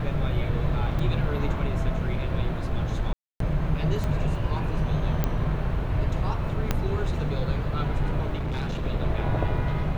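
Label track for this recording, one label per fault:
0.990000	0.990000	gap 3.6 ms
3.130000	3.400000	gap 0.273 s
4.040000	4.040000	pop -17 dBFS
5.240000	5.240000	pop -11 dBFS
6.710000	6.710000	pop -9 dBFS
8.360000	8.850000	clipped -25 dBFS

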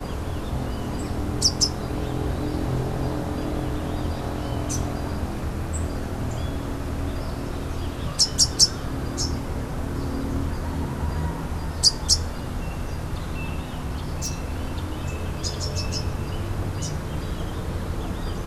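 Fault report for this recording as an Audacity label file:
13.740000	14.460000	clipped -22.5 dBFS

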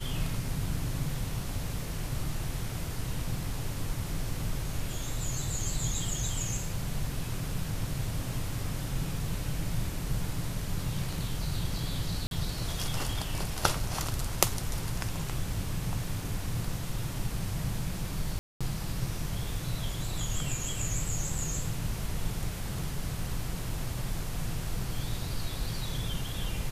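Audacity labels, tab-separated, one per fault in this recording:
12.270000	12.310000	gap 42 ms
18.390000	18.610000	gap 0.216 s

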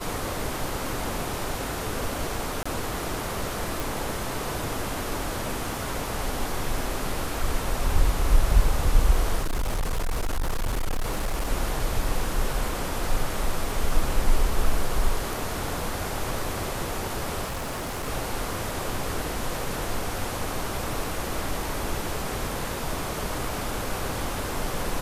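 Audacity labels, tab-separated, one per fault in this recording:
2.630000	2.650000	gap 25 ms
3.800000	3.800000	pop
9.410000	11.490000	clipped -22 dBFS
17.440000	18.080000	clipped -27.5 dBFS

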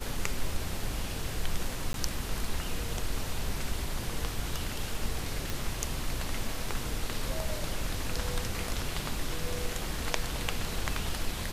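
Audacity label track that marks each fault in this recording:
1.930000	1.940000	gap 12 ms
5.500000	5.500000	pop

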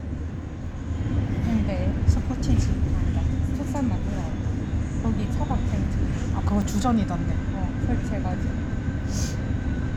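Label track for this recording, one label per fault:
6.620000	6.620000	gap 2.9 ms

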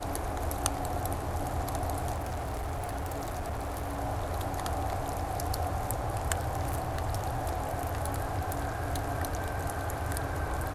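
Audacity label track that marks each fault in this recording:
2.130000	3.990000	clipped -31 dBFS
6.330000	9.120000	clipped -25.5 dBFS

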